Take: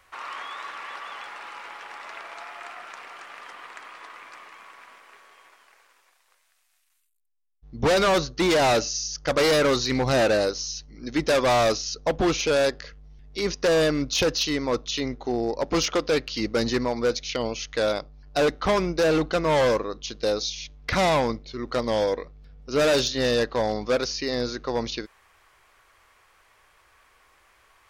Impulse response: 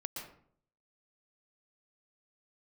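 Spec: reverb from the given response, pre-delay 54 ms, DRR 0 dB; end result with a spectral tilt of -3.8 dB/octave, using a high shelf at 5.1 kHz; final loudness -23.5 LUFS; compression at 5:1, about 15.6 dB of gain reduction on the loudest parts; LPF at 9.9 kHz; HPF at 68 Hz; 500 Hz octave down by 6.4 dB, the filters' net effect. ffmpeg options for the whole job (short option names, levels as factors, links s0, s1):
-filter_complex "[0:a]highpass=68,lowpass=9900,equalizer=f=500:t=o:g=-7.5,highshelf=f=5100:g=-7,acompressor=threshold=0.01:ratio=5,asplit=2[s0][s1];[1:a]atrim=start_sample=2205,adelay=54[s2];[s1][s2]afir=irnorm=-1:irlink=0,volume=1.06[s3];[s0][s3]amix=inputs=2:normalize=0,volume=5.96"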